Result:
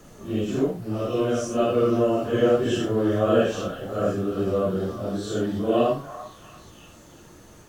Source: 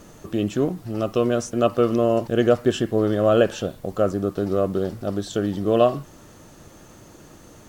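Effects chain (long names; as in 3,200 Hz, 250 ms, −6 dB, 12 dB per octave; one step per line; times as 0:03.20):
random phases in long frames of 200 ms
echo through a band-pass that steps 342 ms, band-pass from 1,100 Hz, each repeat 0.7 octaves, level −8 dB
level −2 dB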